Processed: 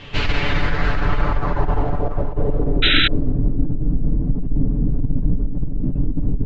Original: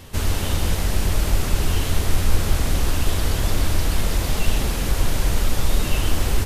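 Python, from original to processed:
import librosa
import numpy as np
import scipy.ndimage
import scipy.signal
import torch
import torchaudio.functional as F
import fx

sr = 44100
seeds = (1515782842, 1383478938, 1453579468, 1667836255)

y = scipy.signal.sosfilt(scipy.signal.cheby1(8, 1.0, 7600.0, 'lowpass', fs=sr, output='sos'), x)
y = y + 0.82 * np.pad(y, (int(6.9 * sr / 1000.0), 0))[:len(y)]
y = fx.over_compress(y, sr, threshold_db=-16.0, ratio=-1.0)
y = fx.filter_sweep_lowpass(y, sr, from_hz=2900.0, to_hz=240.0, start_s=0.08, end_s=3.44, q=2.6)
y = y + 10.0 ** (-11.5 / 20.0) * np.pad(y, (int(682 * sr / 1000.0), 0))[:len(y)]
y = fx.spec_paint(y, sr, seeds[0], shape='noise', start_s=2.82, length_s=0.26, low_hz=1300.0, high_hz=4000.0, level_db=-18.0)
y = fx.dynamic_eq(y, sr, hz=4400.0, q=2.4, threshold_db=-47.0, ratio=4.0, max_db=7)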